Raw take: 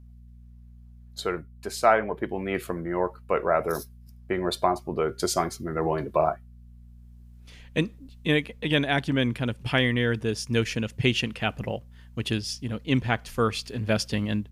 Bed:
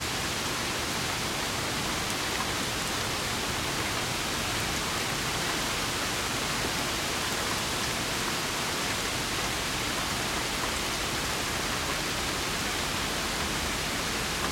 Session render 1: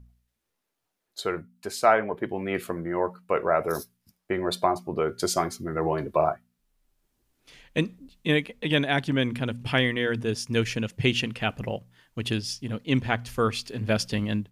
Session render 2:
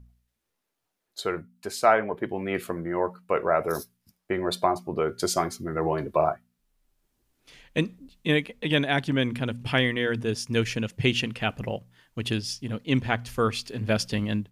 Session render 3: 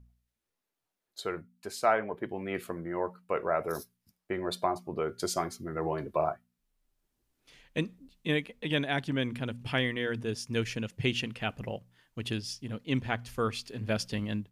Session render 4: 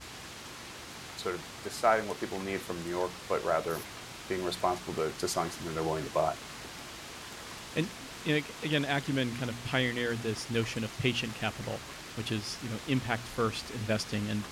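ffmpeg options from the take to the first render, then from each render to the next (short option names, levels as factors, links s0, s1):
-af "bandreject=f=60:t=h:w=4,bandreject=f=120:t=h:w=4,bandreject=f=180:t=h:w=4,bandreject=f=240:t=h:w=4"
-af anull
-af "volume=0.501"
-filter_complex "[1:a]volume=0.188[s0];[0:a][s0]amix=inputs=2:normalize=0"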